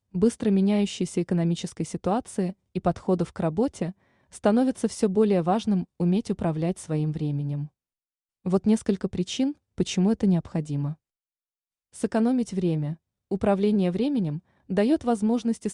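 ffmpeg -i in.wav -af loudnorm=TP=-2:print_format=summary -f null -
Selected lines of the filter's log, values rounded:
Input Integrated:    -25.7 LUFS
Input True Peak:      -9.6 dBTP
Input LRA:             2.2 LU
Input Threshold:     -35.9 LUFS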